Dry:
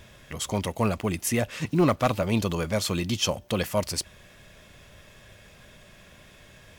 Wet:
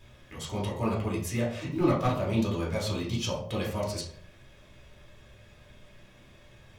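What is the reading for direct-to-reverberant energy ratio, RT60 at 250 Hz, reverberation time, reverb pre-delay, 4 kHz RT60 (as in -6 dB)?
-5.0 dB, 0.70 s, 0.55 s, 3 ms, 0.35 s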